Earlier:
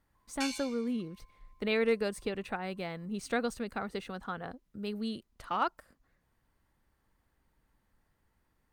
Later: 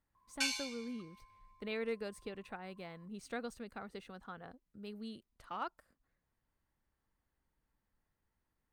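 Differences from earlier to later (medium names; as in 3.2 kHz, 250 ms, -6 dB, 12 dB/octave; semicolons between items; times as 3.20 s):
speech -10.0 dB; background +3.0 dB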